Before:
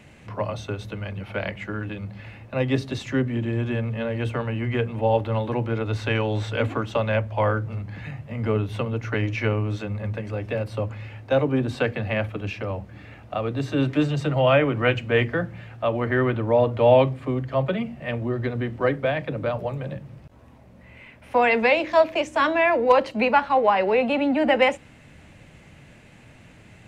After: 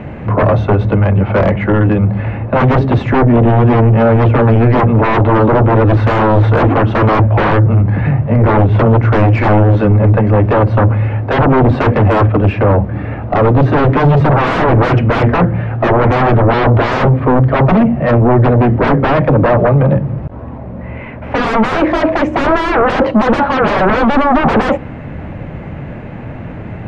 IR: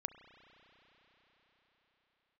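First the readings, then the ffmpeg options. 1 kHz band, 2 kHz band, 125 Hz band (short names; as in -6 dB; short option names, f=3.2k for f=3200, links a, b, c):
+12.5 dB, +8.5 dB, +17.0 dB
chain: -af "aeval=exprs='0.562*sin(PI/2*10*val(0)/0.562)':c=same,lowpass=1.2k"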